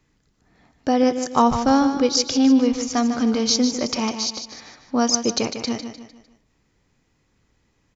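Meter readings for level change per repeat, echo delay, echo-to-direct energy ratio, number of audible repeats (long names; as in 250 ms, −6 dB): −8.0 dB, 151 ms, −8.0 dB, 4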